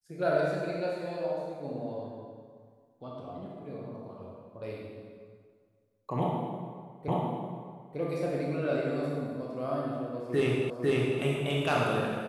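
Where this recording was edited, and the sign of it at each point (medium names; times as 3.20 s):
7.08 s: repeat of the last 0.9 s
10.70 s: repeat of the last 0.5 s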